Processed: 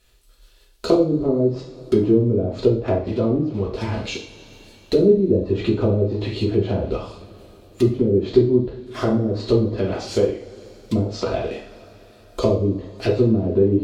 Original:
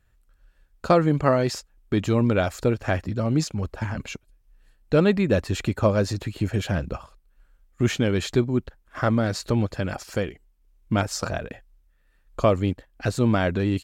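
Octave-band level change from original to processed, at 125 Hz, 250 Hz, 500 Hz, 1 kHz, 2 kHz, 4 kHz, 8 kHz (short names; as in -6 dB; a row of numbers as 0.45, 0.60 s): +1.5 dB, +4.5 dB, +6.0 dB, -4.5 dB, -7.0 dB, 0.0 dB, n/a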